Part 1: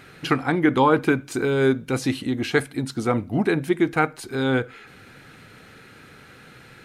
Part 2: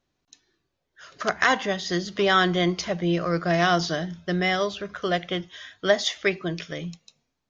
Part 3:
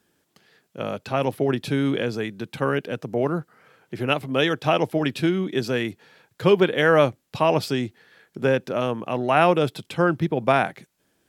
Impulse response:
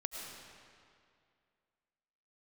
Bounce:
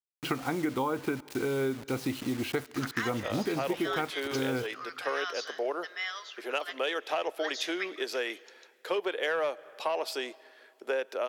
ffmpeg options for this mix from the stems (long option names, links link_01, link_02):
-filter_complex "[0:a]equalizer=frequency=8400:width=1.1:gain=-15,bandreject=frequency=1700:width=7.1,acrusher=bits=5:mix=0:aa=0.000001,volume=-4.5dB,asplit=2[link_01][link_02];[link_02]volume=-24dB[link_03];[1:a]highpass=frequency=1100:width=0.5412,highpass=frequency=1100:width=1.3066,adelay=1550,volume=-9.5dB,asplit=2[link_04][link_05];[link_05]volume=-15.5dB[link_06];[2:a]highpass=frequency=420:width=0.5412,highpass=frequency=420:width=1.3066,asoftclip=type=tanh:threshold=-10.5dB,adelay=2450,volume=-4dB,asplit=2[link_07][link_08];[link_08]volume=-22.5dB[link_09];[3:a]atrim=start_sample=2205[link_10];[link_03][link_06][link_09]amix=inputs=3:normalize=0[link_11];[link_11][link_10]afir=irnorm=-1:irlink=0[link_12];[link_01][link_04][link_07][link_12]amix=inputs=4:normalize=0,highpass=62,equalizer=frequency=160:width_type=o:width=0.7:gain=-4,acompressor=threshold=-27dB:ratio=6"